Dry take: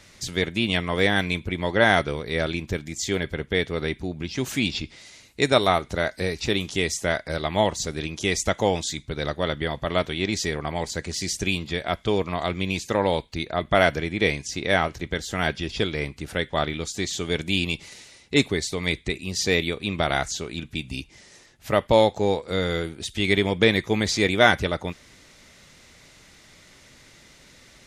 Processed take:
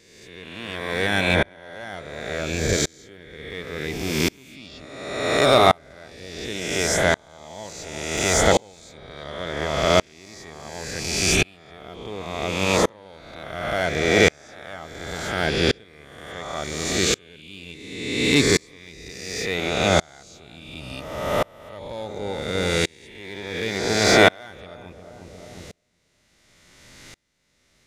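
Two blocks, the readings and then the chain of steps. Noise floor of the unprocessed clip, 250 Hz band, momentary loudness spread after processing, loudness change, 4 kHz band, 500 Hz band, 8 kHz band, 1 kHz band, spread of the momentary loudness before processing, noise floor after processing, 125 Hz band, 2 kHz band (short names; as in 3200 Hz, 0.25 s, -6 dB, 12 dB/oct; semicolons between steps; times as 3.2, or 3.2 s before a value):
-52 dBFS, -0.5 dB, 22 LU, +2.5 dB, +1.5 dB, +0.5 dB, +5.0 dB, +1.0 dB, 10 LU, -61 dBFS, -0.5 dB, +1.0 dB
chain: spectral swells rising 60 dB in 2.44 s; high shelf 8600 Hz +2.5 dB; in parallel at -9 dB: wavefolder -12 dBFS; on the sum: vibrato 1.6 Hz 9.8 cents; on a send: darkening echo 0.357 s, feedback 47%, low-pass 810 Hz, level -10.5 dB; on the sum: dB-ramp tremolo swelling 0.7 Hz, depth 34 dB; gain +2 dB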